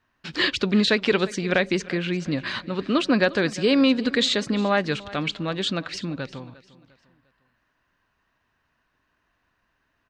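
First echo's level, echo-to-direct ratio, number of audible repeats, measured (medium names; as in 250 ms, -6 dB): -19.0 dB, -18.5 dB, 2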